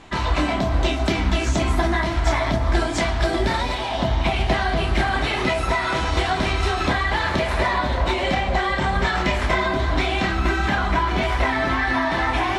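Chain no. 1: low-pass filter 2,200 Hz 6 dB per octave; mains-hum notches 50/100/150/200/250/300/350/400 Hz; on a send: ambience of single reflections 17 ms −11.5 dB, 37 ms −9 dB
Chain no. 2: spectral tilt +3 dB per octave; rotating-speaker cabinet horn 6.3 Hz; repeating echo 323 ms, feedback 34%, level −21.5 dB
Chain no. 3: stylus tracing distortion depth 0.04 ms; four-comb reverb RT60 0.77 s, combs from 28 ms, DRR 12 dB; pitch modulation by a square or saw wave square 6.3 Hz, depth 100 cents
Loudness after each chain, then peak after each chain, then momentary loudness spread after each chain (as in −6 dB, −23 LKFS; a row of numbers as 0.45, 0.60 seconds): −22.0, −24.0, −21.5 LKFS; −7.5, −5.0, −7.5 dBFS; 2, 3, 1 LU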